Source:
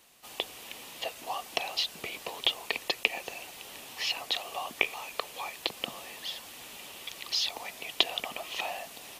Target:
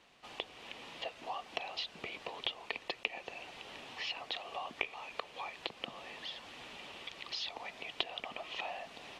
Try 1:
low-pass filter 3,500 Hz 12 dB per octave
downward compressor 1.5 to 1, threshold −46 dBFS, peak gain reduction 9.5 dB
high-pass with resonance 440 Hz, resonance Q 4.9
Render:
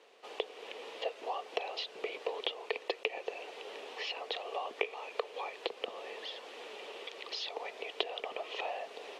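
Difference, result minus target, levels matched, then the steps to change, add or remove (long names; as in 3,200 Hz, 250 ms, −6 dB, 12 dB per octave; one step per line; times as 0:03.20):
500 Hz band +7.0 dB
remove: high-pass with resonance 440 Hz, resonance Q 4.9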